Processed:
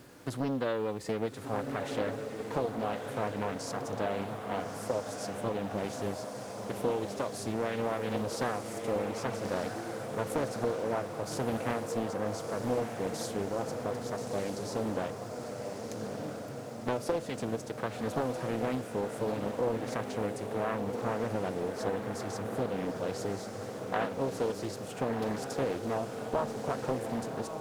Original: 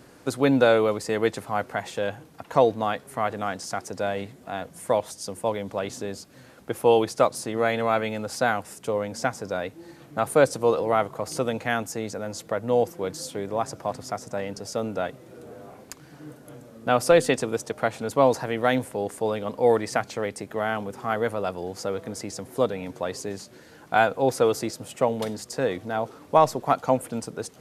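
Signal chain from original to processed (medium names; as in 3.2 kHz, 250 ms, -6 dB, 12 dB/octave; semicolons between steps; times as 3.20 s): harmonic-percussive split percussive -9 dB; compression 6:1, threshold -29 dBFS, peak gain reduction 15 dB; echo that smears into a reverb 1291 ms, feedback 58%, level -5 dB; bit crusher 10-bit; loudspeaker Doppler distortion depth 0.66 ms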